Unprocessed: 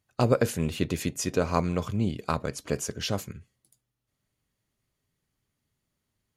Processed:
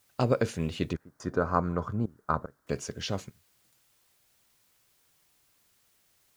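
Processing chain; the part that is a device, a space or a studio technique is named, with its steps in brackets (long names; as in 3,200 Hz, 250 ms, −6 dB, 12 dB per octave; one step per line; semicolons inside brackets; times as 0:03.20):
worn cassette (low-pass filter 6,500 Hz 12 dB per octave; tape wow and flutter; tape dropouts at 0:00.97/0:02.06/0:02.46/0:03.30, 227 ms −20 dB; white noise bed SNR 34 dB)
0:00.93–0:02.67: high shelf with overshoot 1,900 Hz −10 dB, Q 3
level −3 dB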